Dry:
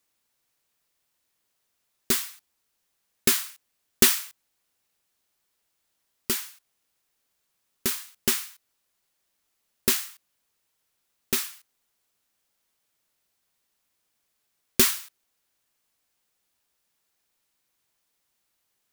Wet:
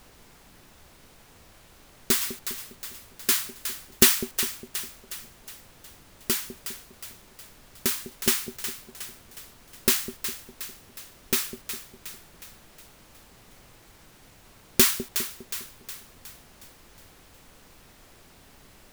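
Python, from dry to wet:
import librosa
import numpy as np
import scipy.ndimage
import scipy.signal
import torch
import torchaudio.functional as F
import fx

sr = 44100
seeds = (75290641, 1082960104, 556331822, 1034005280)

y = fx.over_compress(x, sr, threshold_db=-34.0, ratio=-0.5, at=(2.19, 3.29))
y = fx.echo_split(y, sr, split_hz=600.0, low_ms=203, high_ms=364, feedback_pct=52, wet_db=-9.5)
y = fx.dmg_noise_colour(y, sr, seeds[0], colour='pink', level_db=-54.0)
y = y * librosa.db_to_amplitude(1.0)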